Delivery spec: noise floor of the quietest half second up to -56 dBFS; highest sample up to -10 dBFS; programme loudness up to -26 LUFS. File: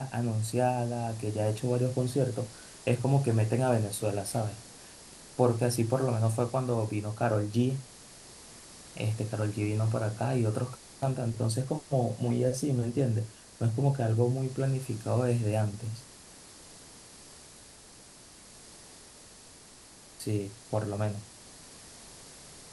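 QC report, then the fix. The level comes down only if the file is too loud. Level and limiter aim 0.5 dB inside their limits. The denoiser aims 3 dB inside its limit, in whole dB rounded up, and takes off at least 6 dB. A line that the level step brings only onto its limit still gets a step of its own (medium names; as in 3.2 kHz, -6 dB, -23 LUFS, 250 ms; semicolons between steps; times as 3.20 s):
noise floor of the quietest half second -53 dBFS: fail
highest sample -10.5 dBFS: pass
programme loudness -30.5 LUFS: pass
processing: noise reduction 6 dB, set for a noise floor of -53 dBFS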